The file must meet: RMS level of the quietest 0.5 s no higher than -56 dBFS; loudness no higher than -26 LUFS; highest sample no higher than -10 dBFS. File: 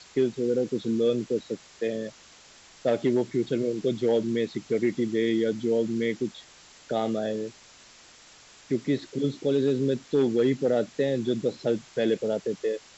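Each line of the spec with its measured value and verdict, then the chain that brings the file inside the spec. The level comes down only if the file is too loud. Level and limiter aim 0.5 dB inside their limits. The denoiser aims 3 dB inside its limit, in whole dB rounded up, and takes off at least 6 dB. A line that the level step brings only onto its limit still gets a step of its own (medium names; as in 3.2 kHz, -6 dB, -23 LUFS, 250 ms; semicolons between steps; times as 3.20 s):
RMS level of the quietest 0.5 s -53 dBFS: fail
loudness -27.0 LUFS: pass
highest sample -13.5 dBFS: pass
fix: noise reduction 6 dB, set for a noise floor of -53 dBFS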